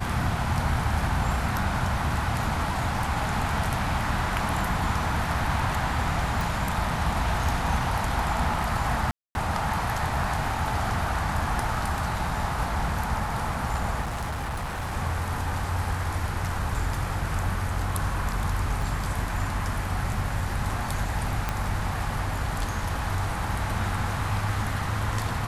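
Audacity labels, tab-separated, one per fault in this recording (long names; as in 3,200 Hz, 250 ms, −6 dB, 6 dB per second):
6.410000	6.410000	click
9.110000	9.350000	drop-out 241 ms
14.010000	14.910000	clipping −27 dBFS
18.820000	18.820000	drop-out 2.3 ms
21.490000	21.490000	click −12 dBFS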